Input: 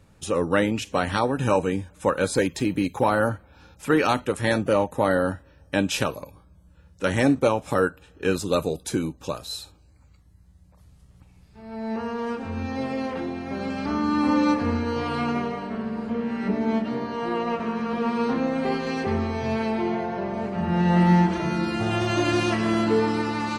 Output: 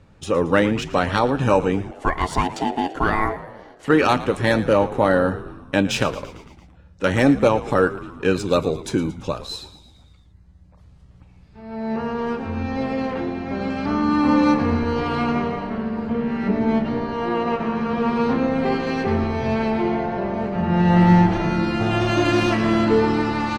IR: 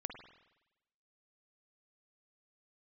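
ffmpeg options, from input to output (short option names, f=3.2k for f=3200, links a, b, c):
-filter_complex "[0:a]adynamicsmooth=sensitivity=2.5:basefreq=5.4k,asplit=7[a][b][c][d][e][f][g];[b]adelay=113,afreqshift=-72,volume=-15.5dB[h];[c]adelay=226,afreqshift=-144,volume=-19.8dB[i];[d]adelay=339,afreqshift=-216,volume=-24.1dB[j];[e]adelay=452,afreqshift=-288,volume=-28.4dB[k];[f]adelay=565,afreqshift=-360,volume=-32.7dB[l];[g]adelay=678,afreqshift=-432,volume=-37dB[m];[a][h][i][j][k][l][m]amix=inputs=7:normalize=0,asettb=1/sr,asplit=3[n][o][p];[n]atrim=end=1.914[q];[o]atrim=start=1.91:end=3.88,asetpts=PTS-STARTPTS,afade=t=in:d=0.004:c=qsin,afade=t=out:st=1.966:d=0.004:c=qsin,aeval=exprs='val(0)*sin(2*PI*550*n/s)':c=same[r];[p]atrim=start=3.876[s];[q][r]acrossfade=d=0.004:c1=hsin:c2=qsin[t];[t][s]acrossfade=d=0.004:c1=qsin:c2=hsin,volume=4dB"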